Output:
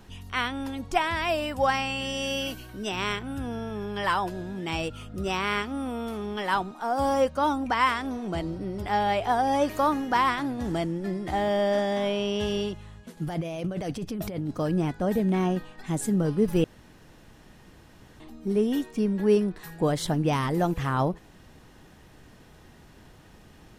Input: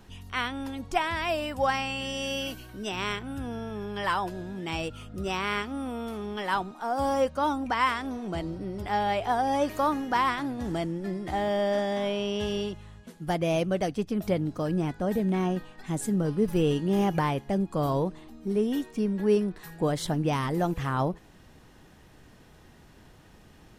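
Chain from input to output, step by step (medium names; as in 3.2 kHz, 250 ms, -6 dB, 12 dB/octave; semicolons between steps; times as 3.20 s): 13.17–14.51 s: compressor with a negative ratio -33 dBFS, ratio -1; 16.64–18.20 s: room tone; trim +2 dB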